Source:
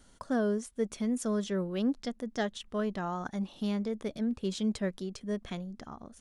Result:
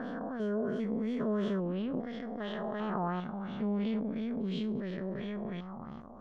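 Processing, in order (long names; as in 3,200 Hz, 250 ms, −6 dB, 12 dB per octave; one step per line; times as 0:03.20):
spectrum averaged block by block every 400 ms
auto-filter low-pass sine 2.9 Hz 830–3,200 Hz
level +2 dB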